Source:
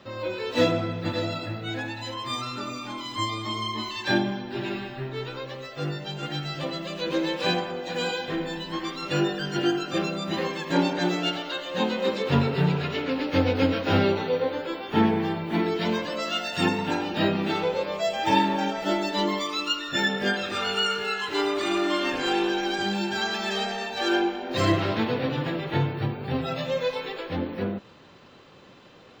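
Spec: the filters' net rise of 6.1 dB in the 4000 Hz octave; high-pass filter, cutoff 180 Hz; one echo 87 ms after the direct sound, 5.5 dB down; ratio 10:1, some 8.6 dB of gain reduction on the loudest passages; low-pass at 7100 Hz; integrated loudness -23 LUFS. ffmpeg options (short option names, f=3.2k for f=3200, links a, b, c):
-af "highpass=180,lowpass=7.1k,equalizer=f=4k:t=o:g=8,acompressor=threshold=-25dB:ratio=10,aecho=1:1:87:0.531,volume=5dB"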